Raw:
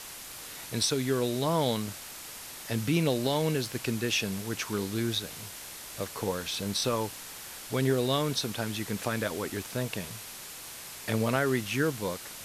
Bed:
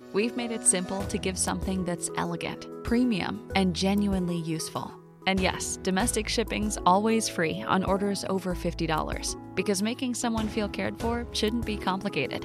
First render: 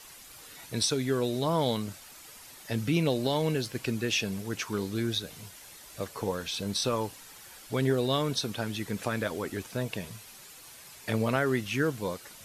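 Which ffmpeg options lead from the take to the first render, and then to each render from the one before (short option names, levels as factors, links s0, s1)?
-af "afftdn=nr=9:nf=-44"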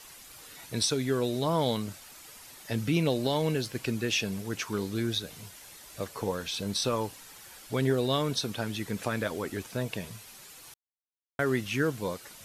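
-filter_complex "[0:a]asplit=3[s0][s1][s2];[s0]atrim=end=10.74,asetpts=PTS-STARTPTS,afade=t=out:st=10.736:d=0.004:c=hsin[s3];[s1]atrim=start=10.74:end=11.39,asetpts=PTS-STARTPTS,volume=0[s4];[s2]atrim=start=11.39,asetpts=PTS-STARTPTS,afade=t=in:d=0.004:c=hsin[s5];[s3][s4][s5]concat=n=3:v=0:a=1"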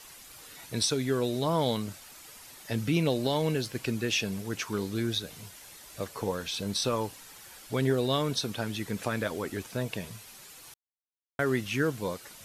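-af anull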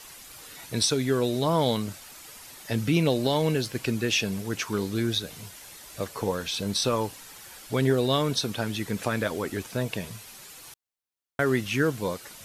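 -af "volume=1.5"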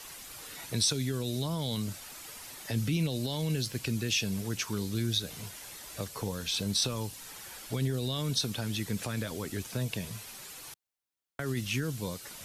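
-filter_complex "[0:a]alimiter=limit=0.158:level=0:latency=1:release=22,acrossover=split=200|3000[s0][s1][s2];[s1]acompressor=threshold=0.0126:ratio=5[s3];[s0][s3][s2]amix=inputs=3:normalize=0"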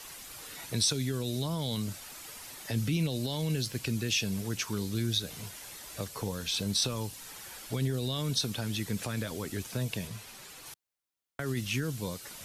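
-filter_complex "[0:a]asettb=1/sr,asplit=3[s0][s1][s2];[s0]atrim=end=10.074[s3];[s1]atrim=start=10.07:end=10.66,asetpts=PTS-STARTPTS,afade=t=in:d=0.004:c=qsin,afade=t=out:st=0.586:d=0.004:c=qsin,highshelf=f=6400:g=-6[s4];[s2]atrim=start=10.656[s5];[s3][s4]acrossfade=d=0.004:c1=hsin:c2=qsin[s6];[s6][s5]acrossfade=d=0.004:c1=qsin:c2=hsin"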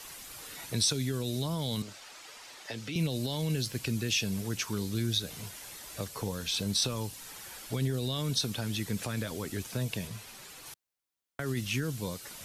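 -filter_complex "[0:a]asettb=1/sr,asplit=3[s0][s1][s2];[s0]atrim=end=1.824[s3];[s1]atrim=start=1.82:end=2.96,asetpts=PTS-STARTPTS,afade=t=in:d=0.004:c=qsin,afade=t=out:st=1.136:d=0.004:c=qsin,acrossover=split=340 7100:gain=0.2 1 0.158[s4][s5][s6];[s4][s5][s6]amix=inputs=3:normalize=0[s7];[s2]atrim=start=2.956[s8];[s3][s7]acrossfade=d=0.004:c1=hsin:c2=qsin[s9];[s9][s8]acrossfade=d=0.004:c1=qsin:c2=hsin"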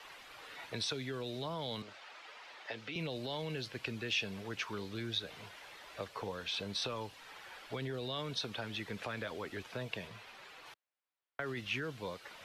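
-filter_complex "[0:a]acrossover=split=400 3700:gain=0.224 1 0.0708[s0][s1][s2];[s0][s1][s2]amix=inputs=3:normalize=0"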